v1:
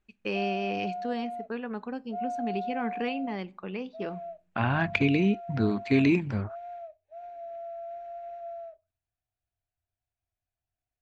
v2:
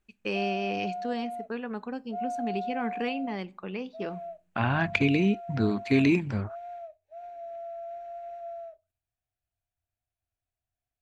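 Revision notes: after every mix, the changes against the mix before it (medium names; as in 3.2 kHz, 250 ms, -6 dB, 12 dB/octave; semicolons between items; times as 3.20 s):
master: remove distance through air 63 m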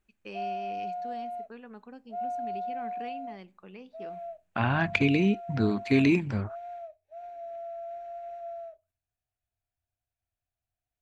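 first voice -11.5 dB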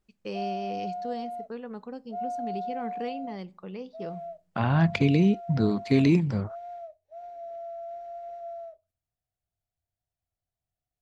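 first voice +6.0 dB; master: add graphic EQ with 31 bands 160 Hz +11 dB, 500 Hz +5 dB, 1.6 kHz -5 dB, 2.5 kHz -7 dB, 5 kHz +6 dB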